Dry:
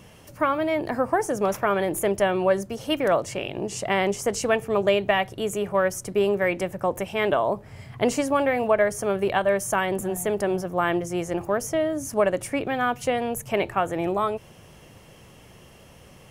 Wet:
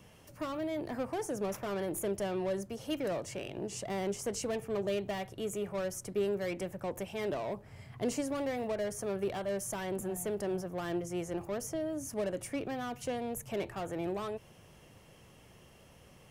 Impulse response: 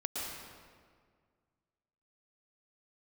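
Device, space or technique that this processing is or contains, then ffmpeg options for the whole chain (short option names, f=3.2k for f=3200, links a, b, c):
one-band saturation: -filter_complex "[0:a]acrossover=split=480|4100[a][b][c];[b]asoftclip=type=tanh:threshold=-31dB[d];[a][d][c]amix=inputs=3:normalize=0,volume=-8.5dB"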